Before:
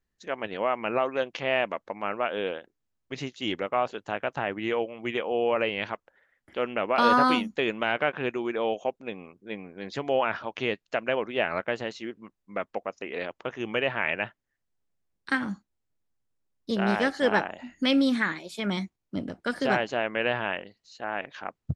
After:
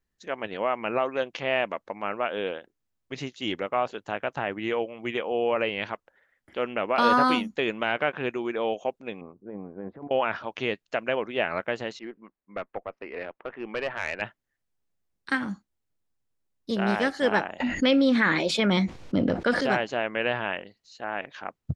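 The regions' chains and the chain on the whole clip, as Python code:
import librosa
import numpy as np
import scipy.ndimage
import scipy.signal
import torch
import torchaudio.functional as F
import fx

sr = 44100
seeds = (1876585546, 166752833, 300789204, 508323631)

y = fx.chain(x, sr, fx.lowpass(hz=1200.0, slope=24),
    fx.over_compress(threshold_db=-38.0, ratio=-1.0), at=(9.21, 10.11))
y = fx.chain(y, sr, fx.lowpass(hz=2500.0, slope=24),
    fx.peak_eq(hz=82.0, db=-15.0, octaves=1.3),
    fx.tube_stage(drive_db=19.0, bias=0.4), at=(11.99, 14.22))
y = fx.chain(y, sr, fx.lowpass(hz=4600.0, slope=12),
    fx.peak_eq(hz=510.0, db=7.0, octaves=0.24),
    fx.env_flatten(amount_pct=70), at=(17.6, 19.61))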